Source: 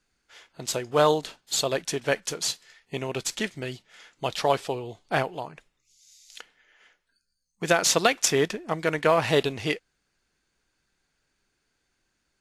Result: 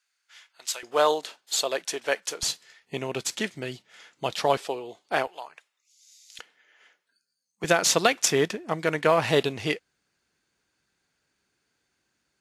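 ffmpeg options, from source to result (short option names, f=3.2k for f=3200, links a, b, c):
-af "asetnsamples=n=441:p=0,asendcmd='0.83 highpass f 430;2.43 highpass f 120;4.57 highpass f 300;5.27 highpass f 860;6.39 highpass f 240;7.64 highpass f 84',highpass=1.3k"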